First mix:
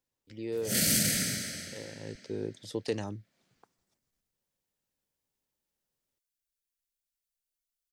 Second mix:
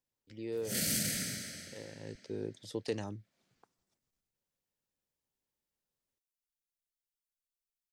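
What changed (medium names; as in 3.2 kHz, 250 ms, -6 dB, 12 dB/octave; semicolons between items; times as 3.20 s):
speech -3.5 dB; background -6.5 dB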